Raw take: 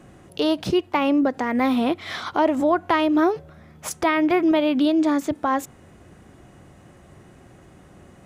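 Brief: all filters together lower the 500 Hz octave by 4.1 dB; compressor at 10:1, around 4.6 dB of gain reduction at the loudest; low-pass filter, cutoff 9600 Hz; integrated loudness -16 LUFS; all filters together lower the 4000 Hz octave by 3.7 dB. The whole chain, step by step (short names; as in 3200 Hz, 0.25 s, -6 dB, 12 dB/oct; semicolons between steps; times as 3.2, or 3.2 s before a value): LPF 9600 Hz; bell 500 Hz -6 dB; bell 4000 Hz -5 dB; compressor 10:1, threshold -22 dBFS; gain +11.5 dB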